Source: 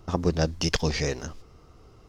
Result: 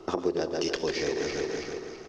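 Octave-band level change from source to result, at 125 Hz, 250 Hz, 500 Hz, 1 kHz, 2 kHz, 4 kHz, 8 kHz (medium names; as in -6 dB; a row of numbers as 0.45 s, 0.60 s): -15.5 dB, -2.0 dB, +2.0 dB, -1.5 dB, -2.0 dB, -3.5 dB, -4.5 dB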